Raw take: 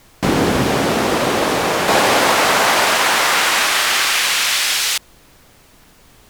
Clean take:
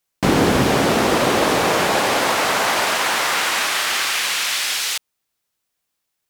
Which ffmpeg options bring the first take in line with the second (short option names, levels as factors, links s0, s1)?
-af "agate=range=0.0891:threshold=0.01,asetnsamples=n=441:p=0,asendcmd='1.88 volume volume -4.5dB',volume=1"